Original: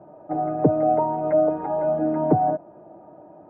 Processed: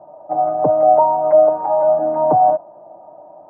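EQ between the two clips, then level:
flat-topped bell 790 Hz +13.5 dB 1.3 octaves
dynamic equaliser 1,300 Hz, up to +5 dB, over −21 dBFS, Q 1.2
−6.0 dB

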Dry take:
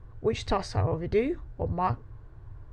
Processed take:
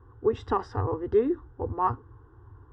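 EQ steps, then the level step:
Savitzky-Golay smoothing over 25 samples
high-pass filter 85 Hz 12 dB per octave
phaser with its sweep stopped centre 620 Hz, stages 6
+4.0 dB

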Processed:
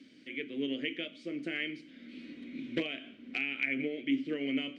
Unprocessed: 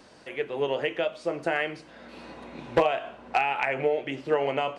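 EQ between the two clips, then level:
formant filter i
bass and treble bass +4 dB, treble +8 dB
+6.5 dB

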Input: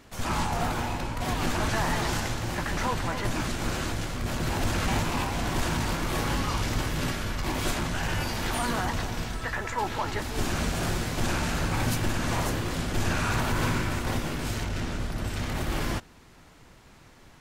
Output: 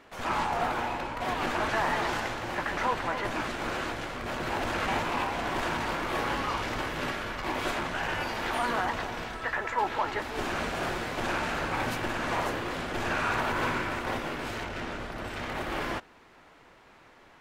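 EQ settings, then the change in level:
bass and treble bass −14 dB, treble −13 dB
+2.0 dB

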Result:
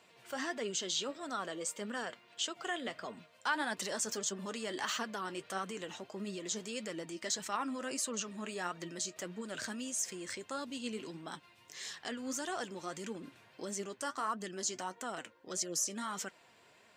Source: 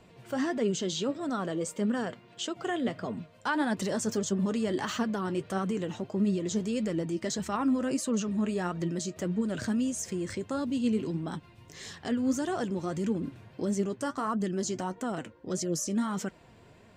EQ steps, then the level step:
high-pass filter 1,400 Hz 6 dB per octave
+1.0 dB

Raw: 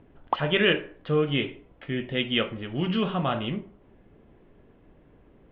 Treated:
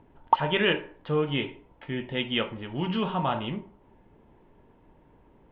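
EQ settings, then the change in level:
parametric band 910 Hz +15 dB 0.2 octaves
−2.5 dB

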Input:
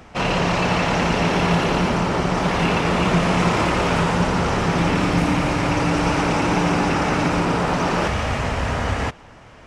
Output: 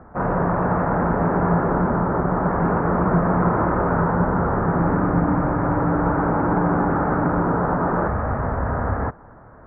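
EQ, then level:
Butterworth low-pass 1,600 Hz 48 dB per octave
0.0 dB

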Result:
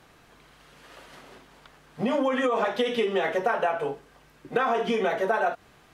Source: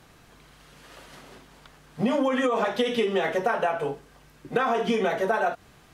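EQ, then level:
bass and treble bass −5 dB, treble −4 dB
0.0 dB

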